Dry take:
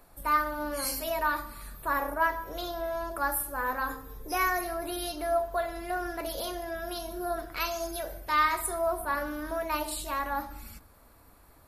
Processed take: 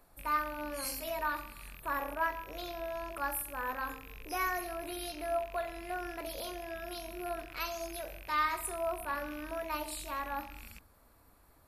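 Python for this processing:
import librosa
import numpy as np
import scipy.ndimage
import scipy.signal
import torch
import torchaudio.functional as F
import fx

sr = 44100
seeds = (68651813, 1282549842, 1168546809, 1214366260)

y = fx.rattle_buzz(x, sr, strikes_db=-47.0, level_db=-31.0)
y = y * 10.0 ** (-6.0 / 20.0)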